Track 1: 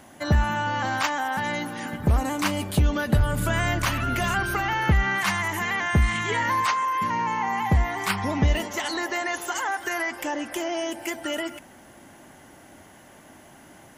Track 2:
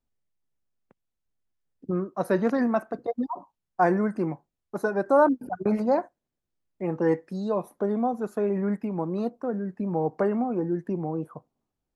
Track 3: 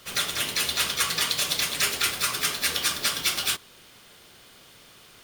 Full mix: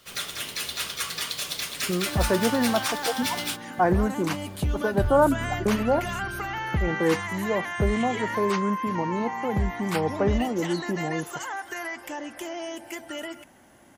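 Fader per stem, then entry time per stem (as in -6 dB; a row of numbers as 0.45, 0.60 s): -6.0, 0.0, -5.5 dB; 1.85, 0.00, 0.00 s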